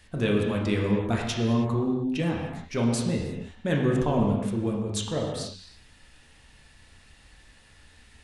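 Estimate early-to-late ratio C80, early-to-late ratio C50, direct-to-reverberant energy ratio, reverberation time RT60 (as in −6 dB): 3.5 dB, 2.0 dB, −1.5 dB, non-exponential decay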